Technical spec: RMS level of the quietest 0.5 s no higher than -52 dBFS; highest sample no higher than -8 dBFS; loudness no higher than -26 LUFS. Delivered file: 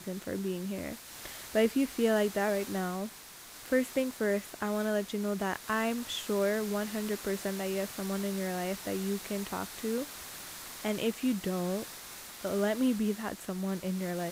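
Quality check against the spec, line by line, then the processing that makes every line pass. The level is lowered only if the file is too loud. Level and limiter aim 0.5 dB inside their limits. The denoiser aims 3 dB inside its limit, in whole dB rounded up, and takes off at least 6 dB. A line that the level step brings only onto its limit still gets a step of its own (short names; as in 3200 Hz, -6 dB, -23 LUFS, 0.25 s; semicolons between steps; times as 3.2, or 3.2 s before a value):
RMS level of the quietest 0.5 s -49 dBFS: fail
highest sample -14.0 dBFS: OK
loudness -33.0 LUFS: OK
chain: denoiser 6 dB, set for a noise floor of -49 dBFS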